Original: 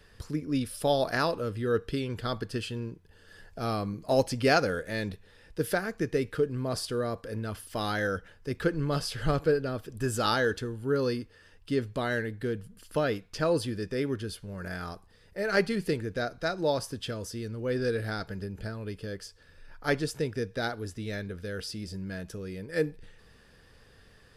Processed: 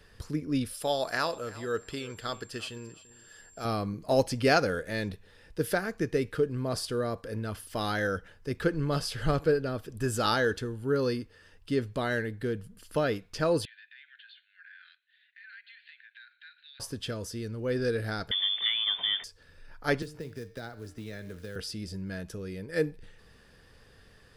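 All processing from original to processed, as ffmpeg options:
ffmpeg -i in.wav -filter_complex "[0:a]asettb=1/sr,asplit=3[link_01][link_02][link_03];[link_01]atrim=end=0.734[link_04];[link_02]atrim=start=0.73:end=3.65,asetpts=PTS-STARTPTS,afade=type=in:duration=0.004:curve=qsin,afade=type=out:start_time=2.916:duration=0.004:curve=qsin,lowshelf=frequency=410:gain=-10.5,aecho=1:1:343|686:0.112|0.0247,atrim=end_sample=128772,aeval=exprs='val(0)+0.00178*sin(2*PI*7400*n/s)':channel_layout=same[link_05];[link_03]atrim=start=3.646[link_06];[link_04][link_05]acrossfade=duration=0.004:curve1=hsin:curve2=qsin[link_07];[link_07][link_06]acrossfade=duration=0.004:curve1=qsin:curve2=hsin,asettb=1/sr,asplit=3[link_08][link_09][link_10];[link_08]atrim=end=13.654[link_11];[link_09]atrim=start=13.65:end=16.8,asetpts=PTS-STARTPTS,afade=type=in:duration=0.004:curve=qsin,afade=type=out:start_time=3.146:duration=0.004:curve=qsin,asuperpass=centerf=2500:order=20:qfactor=0.94,acompressor=threshold=-49dB:ratio=5:attack=3.2:release=140:knee=1:detection=peak[link_12];[link_10]atrim=start=16.796[link_13];[link_11][link_12]acrossfade=duration=0.004:curve1=hsin:curve2=qsin[link_14];[link_14][link_13]acrossfade=duration=0.004:curve1=qsin:curve2=hsin,asettb=1/sr,asplit=3[link_15][link_16][link_17];[link_15]atrim=end=18.314[link_18];[link_16]atrim=start=18.31:end=19.24,asetpts=PTS-STARTPTS,afade=type=in:duration=0.004:curve=qsin,afade=type=out:start_time=0.926:duration=0.004:curve=qsin,aeval=exprs='val(0)+0.5*0.00473*sgn(val(0))':channel_layout=same,lowpass=frequency=3100:width_type=q:width=0.5098,lowpass=frequency=3100:width_type=q:width=0.6013,lowpass=frequency=3100:width_type=q:width=0.9,lowpass=frequency=3100:width_type=q:width=2.563,afreqshift=-3600,acontrast=69[link_19];[link_17]atrim=start=19.236[link_20];[link_18][link_19]acrossfade=duration=0.004:curve1=hsin:curve2=qsin[link_21];[link_21][link_20]acrossfade=duration=0.004:curve1=qsin:curve2=hsin,asettb=1/sr,asplit=3[link_22][link_23][link_24];[link_22]atrim=end=20.024[link_25];[link_23]atrim=start=20.02:end=21.56,asetpts=PTS-STARTPTS,afade=type=in:duration=0.004:curve=qsin,afade=type=out:start_time=1.536:duration=0.004:curve=qsin,acrusher=bits=5:mode=log:mix=0:aa=0.000001,bandreject=frequency=150.9:width_type=h:width=4,bandreject=frequency=301.8:width_type=h:width=4,bandreject=frequency=452.7:width_type=h:width=4,bandreject=frequency=603.6:width_type=h:width=4,bandreject=frequency=754.5:width_type=h:width=4,bandreject=frequency=905.4:width_type=h:width=4,bandreject=frequency=1056.3:width_type=h:width=4,bandreject=frequency=1207.2:width_type=h:width=4,bandreject=frequency=1358.1:width_type=h:width=4,bandreject=frequency=1509:width_type=h:width=4,bandreject=frequency=1659.9:width_type=h:width=4,bandreject=frequency=1810.8:width_type=h:width=4,bandreject=frequency=1961.7:width_type=h:width=4,bandreject=frequency=2112.6:width_type=h:width=4,bandreject=frequency=2263.5:width_type=h:width=4,bandreject=frequency=2414.4:width_type=h:width=4,bandreject=frequency=2565.3:width_type=h:width=4,bandreject=frequency=2716.2:width_type=h:width=4,bandreject=frequency=2867.1:width_type=h:width=4,bandreject=frequency=3018:width_type=h:width=4,bandreject=frequency=3168.9:width_type=h:width=4,bandreject=frequency=3319.8:width_type=h:width=4,bandreject=frequency=3470.7:width_type=h:width=4,bandreject=frequency=3621.6:width_type=h:width=4,bandreject=frequency=3772.5:width_type=h:width=4,bandreject=frequency=3923.4:width_type=h:width=4,bandreject=frequency=4074.3:width_type=h:width=4,bandreject=frequency=4225.2:width_type=h:width=4,bandreject=frequency=4376.1:width_type=h:width=4,bandreject=frequency=4527:width_type=h:width=4,bandreject=frequency=4677.9:width_type=h:width=4,bandreject=frequency=4828.8:width_type=h:width=4,bandreject=frequency=4979.7:width_type=h:width=4,bandreject=frequency=5130.6:width_type=h:width=4,bandreject=frequency=5281.5:width_type=h:width=4,bandreject=frequency=5432.4:width_type=h:width=4,bandreject=frequency=5583.3:width_type=h:width=4,bandreject=frequency=5734.2:width_type=h:width=4,bandreject=frequency=5885.1:width_type=h:width=4,bandreject=frequency=6036:width_type=h:width=4,acrossover=split=150|2800[link_26][link_27][link_28];[link_26]acompressor=threshold=-47dB:ratio=4[link_29];[link_27]acompressor=threshold=-40dB:ratio=4[link_30];[link_28]acompressor=threshold=-55dB:ratio=4[link_31];[link_29][link_30][link_31]amix=inputs=3:normalize=0[link_32];[link_24]atrim=start=21.556[link_33];[link_25][link_32]acrossfade=duration=0.004:curve1=hsin:curve2=qsin[link_34];[link_34][link_33]acrossfade=duration=0.004:curve1=qsin:curve2=hsin" out.wav

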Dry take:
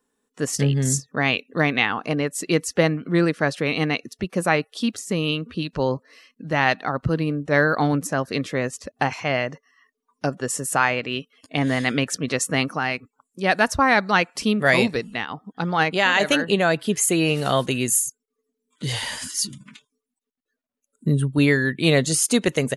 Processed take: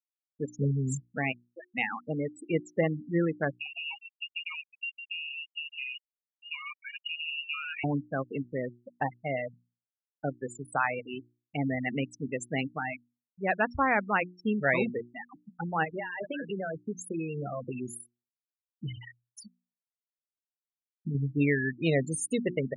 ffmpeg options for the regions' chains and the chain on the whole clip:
ffmpeg -i in.wav -filter_complex "[0:a]asettb=1/sr,asplit=3[link_01][link_02][link_03];[link_01]atrim=end=1.324[link_04];[link_02]atrim=start=1.32:end=1.75,asetpts=PTS-STARTPTS,afade=type=in:duration=0.004:curve=qsin,afade=type=out:start_time=0.426:duration=0.004:curve=qsin,highpass=frequency=670:poles=1,acompressor=threshold=-23dB:ratio=16:attack=3.2:release=140:knee=1:detection=peak,asoftclip=type=hard:threshold=-24.5dB[link_05];[link_03]atrim=start=1.746[link_06];[link_04][link_05]acrossfade=duration=0.004:curve1=hsin:curve2=qsin[link_07];[link_07][link_06]acrossfade=duration=0.004:curve1=qsin:curve2=hsin,asettb=1/sr,asplit=3[link_08][link_09][link_10];[link_08]atrim=end=3.534[link_11];[link_09]atrim=start=3.53:end=7.84,asetpts=PTS-STARTPTS,afade=type=in:duration=0.004:curve=qsin,afade=type=out:start_time=4.306:duration=0.004:curve=qsin,acompressor=threshold=-21dB:ratio=20:attack=3.2:release=140:knee=1:detection=peak,aecho=1:1:154:0.398,atrim=end_sample=190071,lowpass=frequency=2600:width_type=q:width=0.5098,lowpass=frequency=2600:width_type=q:width=0.6013,lowpass=frequency=2600:width_type=q:width=0.9,lowpass=frequency=2600:width_type=q:width=2.563,afreqshift=-3000[link_12];[link_10]atrim=start=7.836[link_13];[link_11][link_12]acrossfade=duration=0.004:curve1=hsin:curve2=qsin[link_14];[link_14][link_13]acrossfade=duration=0.004:curve1=qsin:curve2=hsin,asettb=1/sr,asplit=3[link_15][link_16][link_17];[link_15]atrim=end=15.844[link_18];[link_16]atrim=start=15.84:end=21.15,asetpts=PTS-STARTPTS,afade=type=in:duration=0.004:curve=qsin,afade=type=out:start_time=5.306:duration=0.004:curve=qsin,acompressor=threshold=-20dB:ratio=12:attack=3.2:release=140:knee=1:detection=peak,aecho=1:1:230:0.15,atrim=end_sample=234171[link_19];[link_17]atrim=start=21.146[link_20];[link_18][link_19]acrossfade=duration=0.004:curve1=hsin:curve2=qsin[link_21];[link_21][link_20]acrossfade=duration=0.004:curve1=qsin:curve2=hsin,afftfilt=real='re*gte(hypot(re,im),0.178)':imag='im*gte(hypot(re,im),0.178)':win_size=1024:overlap=0.75,equalizer=frequency=4900:width_type=o:width=0.63:gain=-13.5,bandreject=frequency=60:width_type=h:width=6,bandreject=frequency=120:width_type=h:width=6,bandreject=frequency=180:width_type=h:width=6,bandreject=frequency=240:width_type=h:width=6,bandreject=frequency=300:width_type=h:width=6,bandreject=frequency=360:width_type=h:width=6,volume=-7.5dB" out.wav

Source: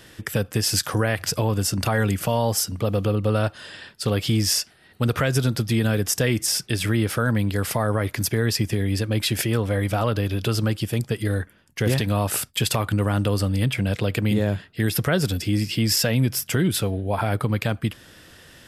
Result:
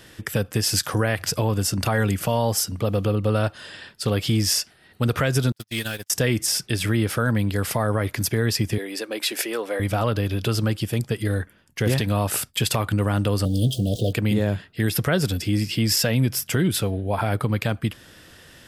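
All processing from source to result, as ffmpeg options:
ffmpeg -i in.wav -filter_complex "[0:a]asettb=1/sr,asplit=3[link_01][link_02][link_03];[link_01]atrim=end=5.524[link_04];[link_02]atrim=start=5.52:end=6.1,asetpts=PTS-STARTPTS,afade=type=in:duration=0.004:curve=qsin,afade=type=out:start_time=0.576:duration=0.004:curve=qsin,aeval=exprs='val(0)+0.5*0.0188*sgn(val(0))':channel_layout=same,agate=range=-46dB:threshold=-20dB:ratio=16:release=100:detection=peak,tiltshelf=frequency=1300:gain=-9[link_05];[link_03]atrim=start=6.096[link_06];[link_04][link_05]acrossfade=duration=0.004:curve1=hsin:curve2=qsin[link_07];[link_07][link_06]acrossfade=duration=0.004:curve1=qsin:curve2=hsin,asettb=1/sr,asplit=3[link_08][link_09][link_10];[link_08]atrim=end=8.784[link_11];[link_09]atrim=start=8.78:end=9.8,asetpts=PTS-STARTPTS,afade=type=in:duration=0.004:curve=qsin,afade=type=out:start_time=1.016:duration=0.004:curve=qsin,highpass=frequency=330:width=0.5412,highpass=frequency=330:width=1.3066,bandreject=frequency=3200:width=22[link_12];[link_10]atrim=start=9.796[link_13];[link_11][link_12]acrossfade=duration=0.004:curve1=hsin:curve2=qsin[link_14];[link_14][link_13]acrossfade=duration=0.004:curve1=qsin:curve2=hsin,asettb=1/sr,asplit=3[link_15][link_16][link_17];[link_15]atrim=end=13.454[link_18];[link_16]atrim=start=13.45:end=14.13,asetpts=PTS-STARTPTS,afade=type=in:duration=0.004:curve=qsin,afade=type=out:start_time=0.676:duration=0.004:curve=qsin,aeval=exprs='val(0)+0.5*0.0224*sgn(val(0))':channel_layout=same,asuperstop=centerf=1500:order=20:qfactor=0.65,asplit=2[link_19][link_20];[link_20]adelay=17,volume=-10.5dB[link_21];[link_19][link_21]amix=inputs=2:normalize=0,atrim=end_sample=29988[link_22];[link_17]atrim=start=14.126[link_23];[link_18][link_22]acrossfade=duration=0.004:curve1=hsin:curve2=qsin[link_24];[link_24][link_23]acrossfade=duration=0.004:curve1=qsin:curve2=hsin" out.wav

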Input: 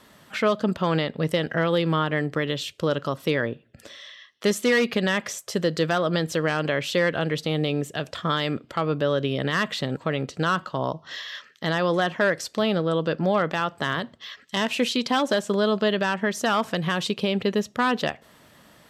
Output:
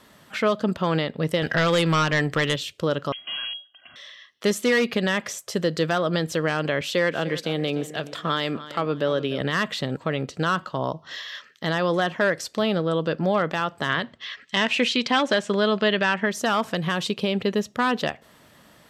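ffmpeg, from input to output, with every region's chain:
ffmpeg -i in.wav -filter_complex "[0:a]asettb=1/sr,asplit=3[link_01][link_02][link_03];[link_01]atrim=end=1.424[link_04];[link_02]atrim=start=1.42:end=2.56,asetpts=PTS-STARTPTS,afade=type=in:duration=0.004:curve=qsin,afade=type=out:start_time=1.136:duration=0.004:curve=qsin,equalizer=frequency=290:width=0.37:gain=-8,aeval=exprs='0.178*sin(PI/2*2*val(0)/0.178)':channel_layout=same[link_05];[link_03]atrim=start=2.556[link_06];[link_04][link_05]acrossfade=duration=0.004:curve1=hsin:curve2=qsin[link_07];[link_07][link_06]acrossfade=duration=0.004:curve1=qsin:curve2=hsin,asettb=1/sr,asplit=3[link_08][link_09][link_10];[link_08]atrim=end=3.124[link_11];[link_09]atrim=start=3.12:end=3.96,asetpts=PTS-STARTPTS,afade=type=in:duration=0.004:curve=qsin,afade=type=out:start_time=0.836:duration=0.004:curve=qsin,aeval=exprs='(tanh(56.2*val(0)+0.8)-tanh(0.8))/56.2':channel_layout=same,aecho=1:1:2.3:0.98,atrim=end_sample=37044,lowpass=frequency=2800:width_type=q:width=0.5098,lowpass=frequency=2800:width_type=q:width=0.6013,lowpass=frequency=2800:width_type=q:width=0.9,lowpass=frequency=2800:width_type=q:width=2.563,afreqshift=-3300[link_12];[link_10]atrim=start=3.956[link_13];[link_11][link_12]acrossfade=duration=0.004:curve1=hsin:curve2=qsin[link_14];[link_14][link_13]acrossfade=duration=0.004:curve1=qsin:curve2=hsin,asettb=1/sr,asplit=3[link_15][link_16][link_17];[link_15]atrim=end=6.814[link_18];[link_16]atrim=start=6.81:end=9.41,asetpts=PTS-STARTPTS,afade=type=in:duration=0.004:curve=qsin,afade=type=out:start_time=2.596:duration=0.004:curve=qsin,highpass=160,aecho=1:1:299|598|897:0.178|0.0569|0.0182,atrim=end_sample=114660[link_19];[link_17]atrim=start=9.406[link_20];[link_18][link_19]acrossfade=duration=0.004:curve1=hsin:curve2=qsin[link_21];[link_21][link_20]acrossfade=duration=0.004:curve1=qsin:curve2=hsin,asettb=1/sr,asplit=3[link_22][link_23][link_24];[link_22]atrim=end=13.894[link_25];[link_23]atrim=start=13.89:end=16.26,asetpts=PTS-STARTPTS,afade=type=in:duration=0.004:curve=qsin,afade=type=out:start_time=2.366:duration=0.004:curve=qsin,lowpass=7800,equalizer=frequency=2200:width=1.1:gain=6.5[link_26];[link_24]atrim=start=16.256[link_27];[link_25][link_26]acrossfade=duration=0.004:curve1=hsin:curve2=qsin[link_28];[link_28][link_27]acrossfade=duration=0.004:curve1=qsin:curve2=hsin" out.wav

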